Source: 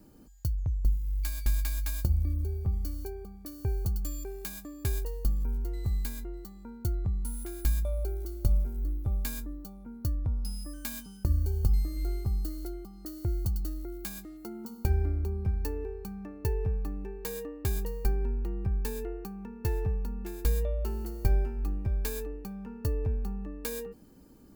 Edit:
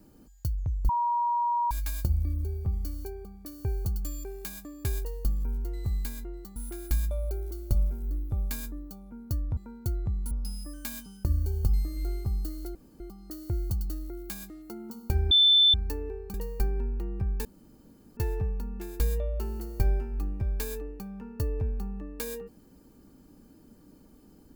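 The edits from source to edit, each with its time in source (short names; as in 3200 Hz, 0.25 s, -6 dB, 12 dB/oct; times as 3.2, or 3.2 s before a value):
0.89–1.71 bleep 953 Hz -23.5 dBFS
6.56–7.3 move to 10.31
12.75 insert room tone 0.25 s
15.06–15.49 bleep 3530 Hz -16 dBFS
16.09–17.79 cut
18.9–19.62 room tone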